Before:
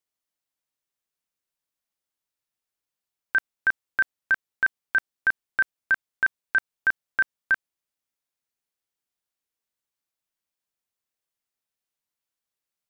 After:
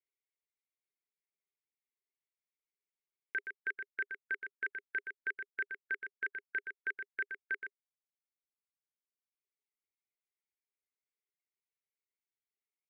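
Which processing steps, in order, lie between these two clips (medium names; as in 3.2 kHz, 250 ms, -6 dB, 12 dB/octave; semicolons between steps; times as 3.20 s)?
reverb removal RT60 2 s; two resonant band-passes 930 Hz, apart 2.4 oct; on a send: delay 121 ms -7 dB; on the sum: trim +1.5 dB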